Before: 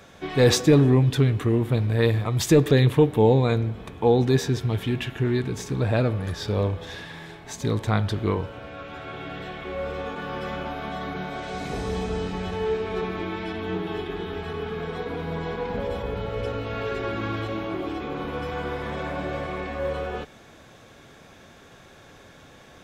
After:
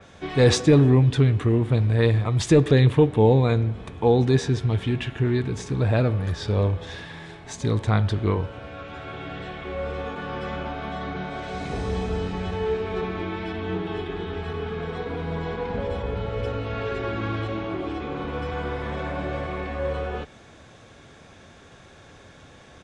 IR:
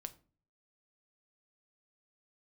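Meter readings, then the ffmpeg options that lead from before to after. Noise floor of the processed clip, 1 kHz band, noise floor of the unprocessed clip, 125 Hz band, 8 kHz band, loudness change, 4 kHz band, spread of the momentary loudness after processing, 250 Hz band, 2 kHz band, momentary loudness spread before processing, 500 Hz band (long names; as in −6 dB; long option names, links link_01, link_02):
−49 dBFS, 0.0 dB, −50 dBFS, +2.0 dB, −2.0 dB, +1.0 dB, −1.0 dB, 14 LU, +0.5 dB, 0.0 dB, 14 LU, 0.0 dB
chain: -af "equalizer=frequency=79:width_type=o:width=1.1:gain=5,aresample=22050,aresample=44100,adynamicequalizer=threshold=0.00631:dfrequency=4300:dqfactor=0.7:tfrequency=4300:tqfactor=0.7:attack=5:release=100:ratio=0.375:range=2:mode=cutabove:tftype=highshelf"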